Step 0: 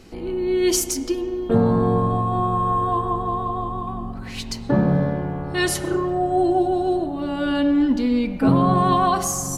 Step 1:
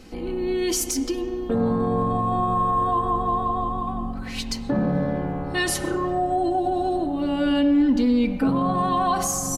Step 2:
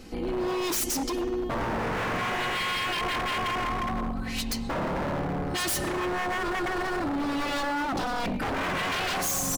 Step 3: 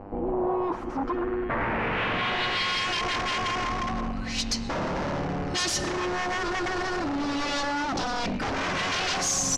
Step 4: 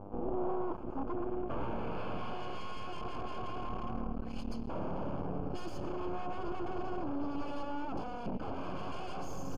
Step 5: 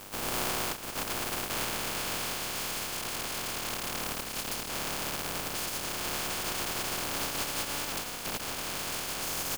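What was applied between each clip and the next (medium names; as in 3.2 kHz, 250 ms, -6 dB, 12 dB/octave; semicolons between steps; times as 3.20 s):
peak limiter -15 dBFS, peak gain reduction 9.5 dB; comb 3.9 ms, depth 38%
wavefolder -24 dBFS; treble shelf 11 kHz +4 dB
mains buzz 100 Hz, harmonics 30, -47 dBFS -3 dB/octave; low-pass sweep 810 Hz -> 5.9 kHz, 0.53–2.84 s
half-wave rectifier; boxcar filter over 23 samples; trim -2.5 dB
spectral contrast reduction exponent 0.17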